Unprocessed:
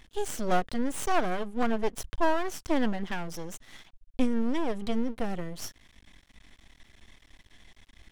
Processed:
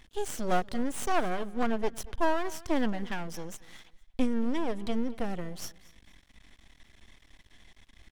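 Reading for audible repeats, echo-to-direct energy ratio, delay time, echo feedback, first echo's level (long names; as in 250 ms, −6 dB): 2, −20.5 dB, 232 ms, 28%, −21.0 dB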